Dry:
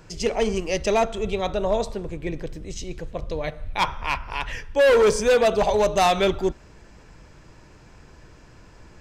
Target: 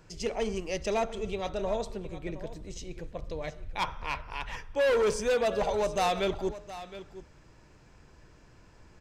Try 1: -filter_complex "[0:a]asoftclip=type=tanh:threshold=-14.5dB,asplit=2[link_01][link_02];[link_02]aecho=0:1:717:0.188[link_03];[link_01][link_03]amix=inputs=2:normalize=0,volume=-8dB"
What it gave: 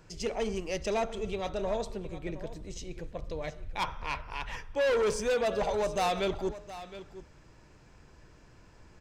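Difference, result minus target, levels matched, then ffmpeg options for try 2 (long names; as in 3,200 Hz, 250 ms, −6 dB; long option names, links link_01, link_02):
soft clipping: distortion +10 dB
-filter_complex "[0:a]asoftclip=type=tanh:threshold=-8.5dB,asplit=2[link_01][link_02];[link_02]aecho=0:1:717:0.188[link_03];[link_01][link_03]amix=inputs=2:normalize=0,volume=-8dB"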